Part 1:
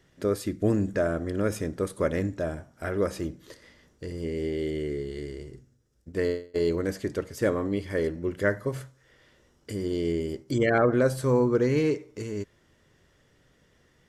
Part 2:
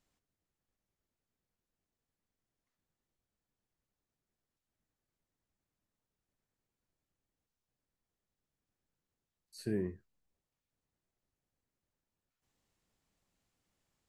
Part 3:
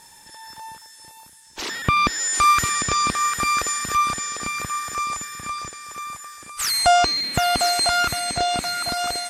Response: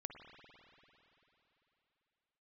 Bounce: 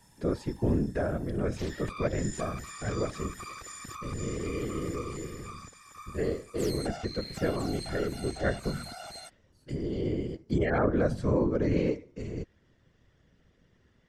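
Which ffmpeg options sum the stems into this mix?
-filter_complex "[0:a]lowpass=5700,volume=0dB[link_01];[1:a]volume=-13.5dB[link_02];[2:a]acompressor=threshold=-24dB:ratio=6,volume=-10dB[link_03];[link_01][link_02][link_03]amix=inputs=3:normalize=0,lowshelf=frequency=160:gain=10,afftfilt=real='hypot(re,im)*cos(2*PI*random(0))':imag='hypot(re,im)*sin(2*PI*random(1))':win_size=512:overlap=0.75"

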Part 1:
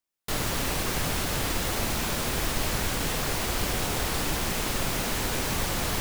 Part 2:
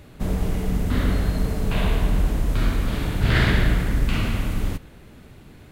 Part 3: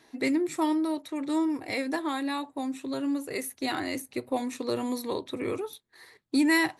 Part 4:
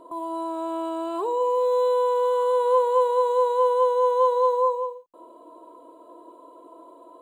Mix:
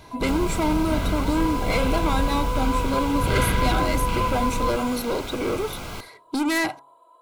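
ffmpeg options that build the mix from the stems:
ffmpeg -i stem1.wav -i stem2.wav -i stem3.wav -i stem4.wav -filter_complex "[0:a]highshelf=frequency=4600:gain=-9.5,acrossover=split=620|1600[link_01][link_02][link_03];[link_01]acompressor=threshold=-35dB:ratio=4[link_04];[link_02]acompressor=threshold=-44dB:ratio=4[link_05];[link_03]acompressor=threshold=-41dB:ratio=4[link_06];[link_04][link_05][link_06]amix=inputs=3:normalize=0,volume=1dB,asplit=2[link_07][link_08];[link_08]volume=-20.5dB[link_09];[1:a]volume=-4.5dB[link_10];[2:a]equalizer=frequency=610:width_type=o:width=0.37:gain=6.5,acontrast=51,asoftclip=type=tanh:threshold=-23dB,volume=2dB[link_11];[3:a]highpass=920,volume=-3dB[link_12];[link_09]aecho=0:1:72:1[link_13];[link_07][link_10][link_11][link_12][link_13]amix=inputs=5:normalize=0,asuperstop=centerf=1800:order=20:qfactor=6.5,equalizer=frequency=1500:width_type=o:width=1.6:gain=2.5,bandreject=frequency=138.2:width_type=h:width=4,bandreject=frequency=276.4:width_type=h:width=4,bandreject=frequency=414.6:width_type=h:width=4,bandreject=frequency=552.8:width_type=h:width=4,bandreject=frequency=691:width_type=h:width=4,bandreject=frequency=829.2:width_type=h:width=4,bandreject=frequency=967.4:width_type=h:width=4,bandreject=frequency=1105.6:width_type=h:width=4,bandreject=frequency=1243.8:width_type=h:width=4" out.wav

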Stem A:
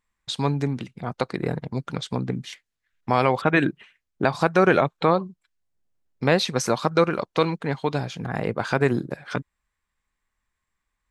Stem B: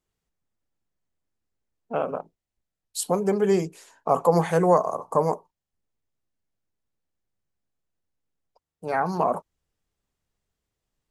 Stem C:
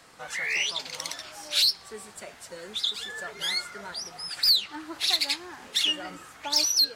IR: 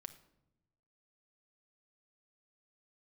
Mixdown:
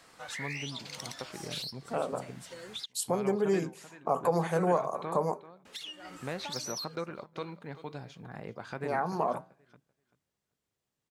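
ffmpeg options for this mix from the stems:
-filter_complex "[0:a]acrusher=bits=10:mix=0:aa=0.000001,volume=-12.5dB,asplit=3[link_01][link_02][link_03];[link_02]volume=-20dB[link_04];[link_03]volume=-21dB[link_05];[1:a]highpass=100,volume=2dB,asplit=3[link_06][link_07][link_08];[link_07]volume=-21.5dB[link_09];[2:a]acompressor=threshold=-33dB:ratio=12,volume=-4dB,asplit=3[link_10][link_11][link_12];[link_10]atrim=end=2.86,asetpts=PTS-STARTPTS,afade=type=out:start_time=2.856:duration=0.004:curve=hsin[link_13];[link_11]atrim=start=2.86:end=5.65,asetpts=PTS-STARTPTS,volume=0[link_14];[link_12]atrim=start=5.65,asetpts=PTS-STARTPTS,afade=type=in:duration=0.004:curve=hsin[link_15];[link_13][link_14][link_15]concat=n=3:v=0:a=1[link_16];[link_08]apad=whole_len=306702[link_17];[link_16][link_17]sidechaincompress=threshold=-23dB:ratio=8:attack=26:release=1140[link_18];[link_01][link_06]amix=inputs=2:normalize=0,flanger=delay=5.1:depth=3.5:regen=-84:speed=0.59:shape=sinusoidal,acompressor=threshold=-36dB:ratio=1.5,volume=0dB[link_19];[3:a]atrim=start_sample=2205[link_20];[link_04][link_09]amix=inputs=2:normalize=0[link_21];[link_21][link_20]afir=irnorm=-1:irlink=0[link_22];[link_05]aecho=0:1:387|774|1161:1|0.19|0.0361[link_23];[link_18][link_19][link_22][link_23]amix=inputs=4:normalize=0"

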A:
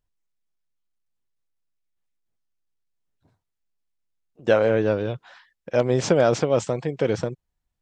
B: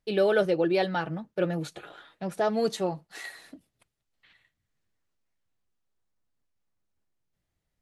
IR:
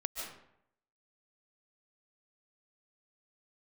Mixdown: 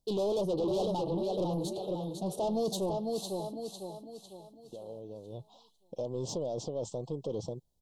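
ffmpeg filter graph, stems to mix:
-filter_complex "[0:a]alimiter=limit=-16dB:level=0:latency=1:release=301,adelay=250,volume=-5.5dB,afade=type=in:start_time=5.28:duration=0.28:silence=0.237137[link_01];[1:a]highshelf=frequency=9400:gain=4.5,volume=1.5dB,asplit=2[link_02][link_03];[link_03]volume=-7dB,aecho=0:1:501|1002|1503|2004|2505|3006:1|0.41|0.168|0.0689|0.0283|0.0116[link_04];[link_01][link_02][link_04]amix=inputs=3:normalize=0,asoftclip=type=tanh:threshold=-27.5dB,asuperstop=centerf=1800:order=8:qfactor=0.77"

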